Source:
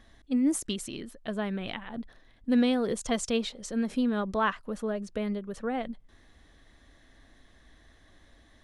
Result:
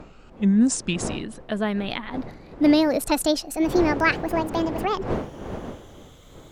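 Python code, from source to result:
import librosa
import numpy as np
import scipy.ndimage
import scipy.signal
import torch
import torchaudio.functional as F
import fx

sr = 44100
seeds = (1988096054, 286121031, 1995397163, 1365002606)

y = fx.speed_glide(x, sr, from_pct=70, to_pct=195)
y = fx.dmg_wind(y, sr, seeds[0], corner_hz=480.0, level_db=-41.0)
y = y * librosa.db_to_amplitude(7.0)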